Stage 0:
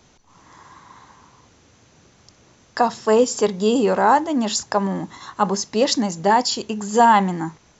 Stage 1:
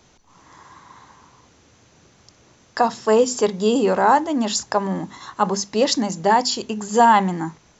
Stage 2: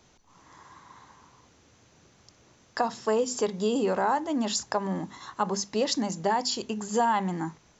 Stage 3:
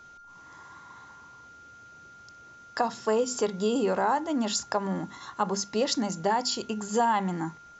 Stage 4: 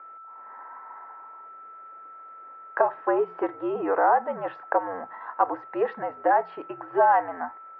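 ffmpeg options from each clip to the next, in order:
-af "bandreject=f=50:t=h:w=6,bandreject=f=100:t=h:w=6,bandreject=f=150:t=h:w=6,bandreject=f=200:t=h:w=6,bandreject=f=250:t=h:w=6"
-af "acompressor=threshold=0.141:ratio=3,volume=0.531"
-af "aeval=exprs='val(0)+0.00398*sin(2*PI*1400*n/s)':c=same"
-af "highpass=f=510:t=q:w=0.5412,highpass=f=510:t=q:w=1.307,lowpass=f=2000:t=q:w=0.5176,lowpass=f=2000:t=q:w=0.7071,lowpass=f=2000:t=q:w=1.932,afreqshift=-77,volume=2"

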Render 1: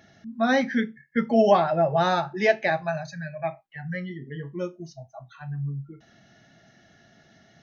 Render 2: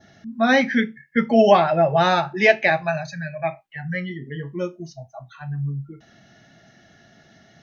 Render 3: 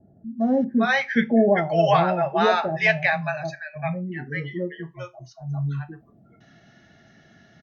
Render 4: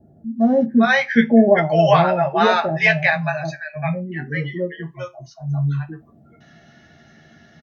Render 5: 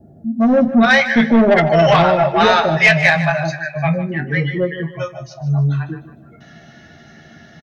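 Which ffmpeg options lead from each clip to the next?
-af "adynamicequalizer=threshold=0.00631:dfrequency=2500:dqfactor=1.8:tfrequency=2500:tqfactor=1.8:attack=5:release=100:ratio=0.375:range=3.5:mode=boostabove:tftype=bell,volume=1.58"
-filter_complex "[0:a]highshelf=f=4300:g=-8.5,acrossover=split=640[s0][s1];[s1]adelay=400[s2];[s0][s2]amix=inputs=2:normalize=0"
-filter_complex "[0:a]asplit=2[s0][s1];[s1]adelay=13,volume=0.501[s2];[s0][s2]amix=inputs=2:normalize=0,volume=1.5"
-filter_complex "[0:a]acrossover=split=2500[s0][s1];[s0]asoftclip=type=tanh:threshold=0.2[s2];[s2][s1]amix=inputs=2:normalize=0,aecho=1:1:152|304|456|608:0.211|0.0782|0.0289|0.0107,volume=2.11"

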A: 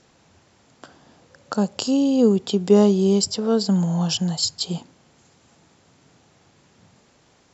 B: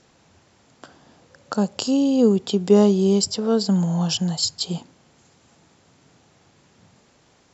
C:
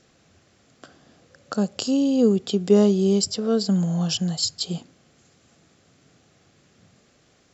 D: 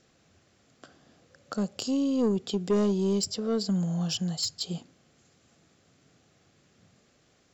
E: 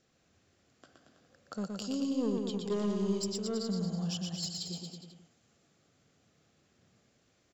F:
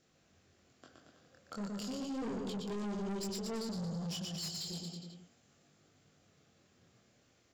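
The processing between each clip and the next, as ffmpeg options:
-af anull
-af "equalizer=f=920:w=5.8:g=-12.5,volume=0.841"
-af "asoftclip=type=tanh:threshold=0.211,volume=0.562"
-af "aecho=1:1:120|228|325.2|412.7|491.4:0.631|0.398|0.251|0.158|0.1,volume=0.398"
-af "flanger=delay=20:depth=5.3:speed=0.34,asoftclip=type=tanh:threshold=0.01,volume=1.58"

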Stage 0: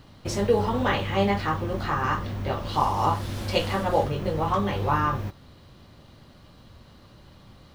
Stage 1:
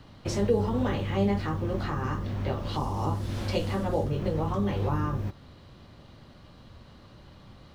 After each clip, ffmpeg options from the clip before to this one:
-filter_complex "[0:a]highshelf=f=8600:g=-10.5,acrossover=split=310|440|5700[s0][s1][s2][s3];[s2]acompressor=threshold=0.0158:ratio=4[s4];[s0][s1][s4][s3]amix=inputs=4:normalize=0"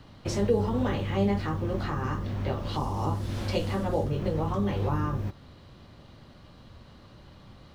-af anull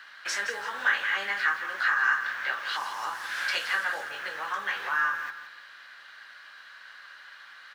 -af "highpass=f=1600:t=q:w=7.6,aecho=1:1:169|338|507|676:0.282|0.0958|0.0326|0.0111,volume=1.68"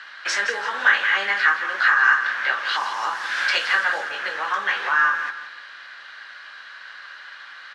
-af "highpass=200,lowpass=6300,volume=2.51"

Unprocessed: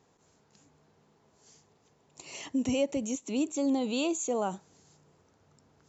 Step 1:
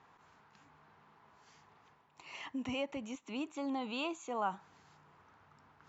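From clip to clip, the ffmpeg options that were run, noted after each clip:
-af "lowpass=2400,lowshelf=f=730:t=q:w=1.5:g=-10,areverse,acompressor=mode=upward:threshold=0.00158:ratio=2.5,areverse,volume=1.12"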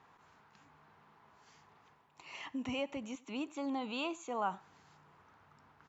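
-af "aecho=1:1:93:0.0708"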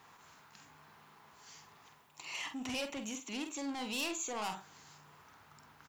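-filter_complex "[0:a]asoftclip=type=tanh:threshold=0.0126,crystalizer=i=4:c=0,asplit=2[s0][s1];[s1]adelay=47,volume=0.422[s2];[s0][s2]amix=inputs=2:normalize=0,volume=1.12"

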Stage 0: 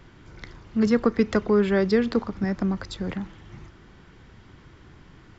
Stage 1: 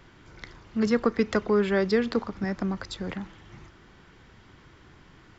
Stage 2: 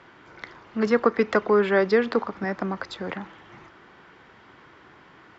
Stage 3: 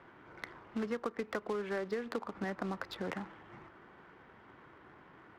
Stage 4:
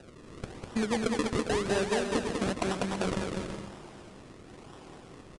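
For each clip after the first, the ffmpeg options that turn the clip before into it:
-af "lowshelf=f=350:g=-5.5"
-af "bandpass=f=980:t=q:w=0.53:csg=0,volume=2.24"
-af "acompressor=threshold=0.0398:ratio=10,acrusher=bits=3:mode=log:mix=0:aa=0.000001,adynamicsmooth=sensitivity=6:basefreq=2300,volume=0.562"
-af "acrusher=samples=40:mix=1:aa=0.000001:lfo=1:lforange=40:lforate=1,aresample=22050,aresample=44100,aecho=1:1:200|330|414.5|469.4|505.1:0.631|0.398|0.251|0.158|0.1,volume=2.11"

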